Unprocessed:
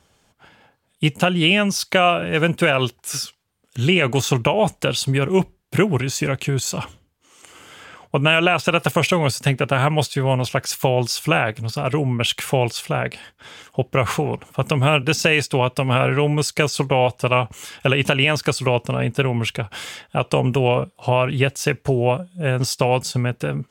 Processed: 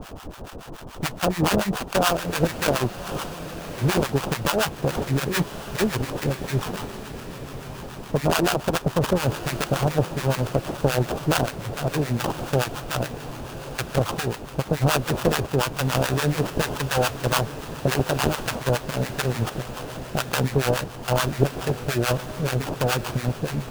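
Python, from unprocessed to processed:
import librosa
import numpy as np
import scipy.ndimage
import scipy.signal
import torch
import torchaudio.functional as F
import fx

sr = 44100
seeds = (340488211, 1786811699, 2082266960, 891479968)

p1 = fx.dmg_noise_colour(x, sr, seeds[0], colour='pink', level_db=-34.0)
p2 = fx.sample_hold(p1, sr, seeds[1], rate_hz=2100.0, jitter_pct=20)
p3 = fx.harmonic_tremolo(p2, sr, hz=7.0, depth_pct=100, crossover_hz=830.0)
y = p3 + fx.echo_diffused(p3, sr, ms=1128, feedback_pct=48, wet_db=-13.5, dry=0)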